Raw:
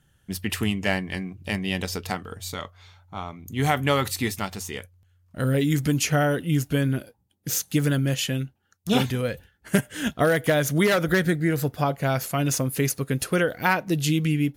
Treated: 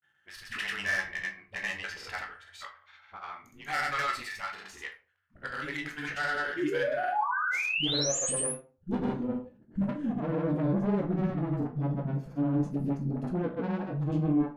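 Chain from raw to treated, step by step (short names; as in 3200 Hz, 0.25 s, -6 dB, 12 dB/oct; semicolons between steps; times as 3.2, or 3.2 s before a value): band-pass sweep 1700 Hz -> 230 Hz, 6.82–9.39; tube stage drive 30 dB, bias 0.3; painted sound rise, 6.5–8.39, 290–11000 Hz -35 dBFS; dispersion highs, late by 71 ms, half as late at 300 Hz; grains, pitch spread up and down by 0 st; on a send: reverb RT60 0.35 s, pre-delay 14 ms, DRR 2.5 dB; on the sum: gain +4.5 dB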